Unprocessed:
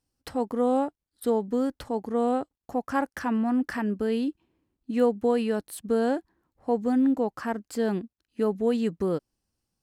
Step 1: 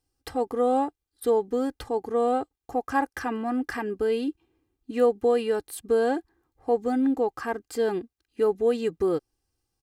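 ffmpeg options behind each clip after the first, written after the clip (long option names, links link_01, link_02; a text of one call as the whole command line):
ffmpeg -i in.wav -af "aecho=1:1:2.5:0.66" out.wav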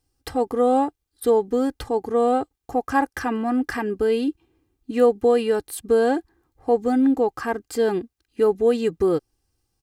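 ffmpeg -i in.wav -af "bass=frequency=250:gain=3,treble=frequency=4000:gain=1,volume=4dB" out.wav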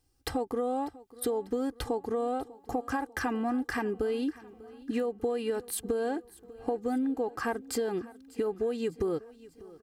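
ffmpeg -i in.wav -af "alimiter=limit=-13.5dB:level=0:latency=1:release=302,acompressor=threshold=-28dB:ratio=6,aecho=1:1:595|1190|1785|2380:0.1|0.053|0.0281|0.0149" out.wav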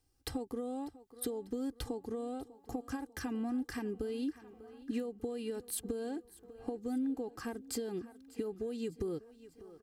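ffmpeg -i in.wav -filter_complex "[0:a]acrossover=split=380|3000[link_01][link_02][link_03];[link_02]acompressor=threshold=-51dB:ratio=2[link_04];[link_01][link_04][link_03]amix=inputs=3:normalize=0,volume=-3.5dB" out.wav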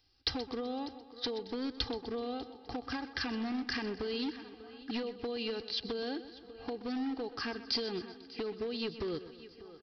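ffmpeg -i in.wav -af "aresample=11025,asoftclip=type=hard:threshold=-33dB,aresample=44100,crystalizer=i=9.5:c=0,aecho=1:1:126|252|378|504|630:0.2|0.104|0.054|0.0281|0.0146" out.wav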